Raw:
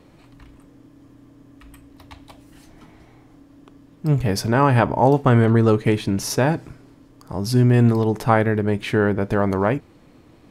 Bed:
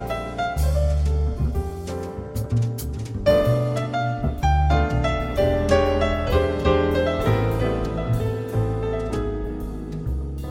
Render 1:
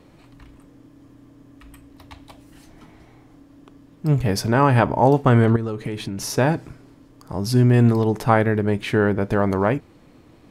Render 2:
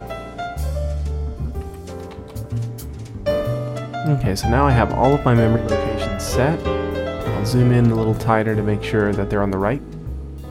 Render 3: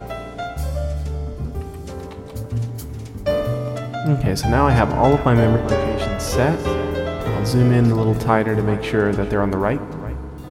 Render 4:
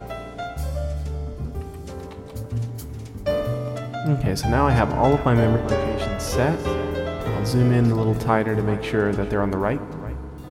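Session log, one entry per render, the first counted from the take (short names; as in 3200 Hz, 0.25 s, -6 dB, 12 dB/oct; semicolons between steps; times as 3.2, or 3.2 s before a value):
5.56–6.35 compressor 5:1, threshold -24 dBFS
add bed -3 dB
echo 0.389 s -16.5 dB; FDN reverb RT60 3.8 s, high-frequency decay 0.6×, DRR 14 dB
gain -3 dB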